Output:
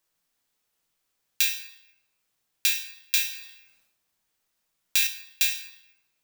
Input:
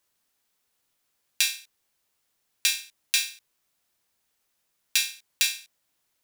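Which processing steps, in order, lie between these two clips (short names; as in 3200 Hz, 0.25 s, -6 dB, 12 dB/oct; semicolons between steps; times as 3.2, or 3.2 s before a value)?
reverb RT60 1.0 s, pre-delay 6 ms, DRR 5 dB; careless resampling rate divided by 2×, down filtered, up zero stuff; 3.27–5.07 sustainer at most 62 dB/s; gain -3 dB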